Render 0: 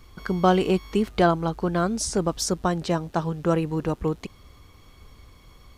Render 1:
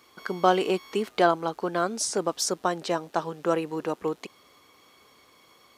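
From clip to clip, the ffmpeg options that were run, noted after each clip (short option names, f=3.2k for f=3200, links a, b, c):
-af "highpass=350"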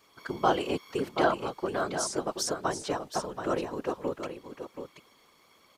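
-af "afftfilt=real='hypot(re,im)*cos(2*PI*random(0))':imag='hypot(re,im)*sin(2*PI*random(1))':win_size=512:overlap=0.75,aecho=1:1:729:0.376,volume=1.5dB"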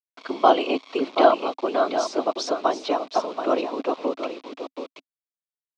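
-af "acrusher=bits=7:mix=0:aa=0.000001,highpass=f=260:w=0.5412,highpass=f=260:w=1.3066,equalizer=f=270:t=q:w=4:g=7,equalizer=f=670:t=q:w=4:g=8,equalizer=f=1.1k:t=q:w=4:g=4,equalizer=f=1.7k:t=q:w=4:g=-7,equalizer=f=2.5k:t=q:w=4:g=5,equalizer=f=3.8k:t=q:w=4:g=5,lowpass=f=5.1k:w=0.5412,lowpass=f=5.1k:w=1.3066,volume=4.5dB"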